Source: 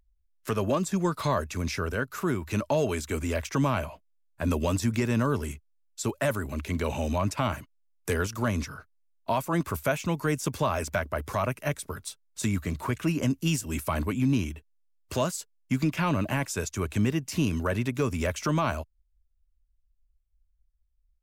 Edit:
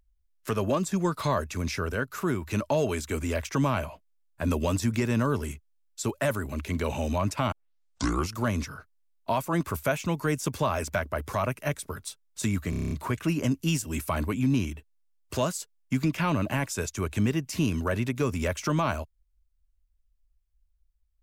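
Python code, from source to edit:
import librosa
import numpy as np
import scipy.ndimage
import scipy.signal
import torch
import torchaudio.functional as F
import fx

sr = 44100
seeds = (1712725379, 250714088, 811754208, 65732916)

y = fx.edit(x, sr, fx.tape_start(start_s=7.52, length_s=0.83),
    fx.stutter(start_s=12.7, slice_s=0.03, count=8), tone=tone)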